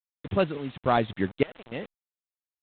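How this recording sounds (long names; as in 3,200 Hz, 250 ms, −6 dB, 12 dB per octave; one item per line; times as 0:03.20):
sample-and-hold tremolo 3.5 Hz, depth 95%
a quantiser's noise floor 8 bits, dither none
IMA ADPCM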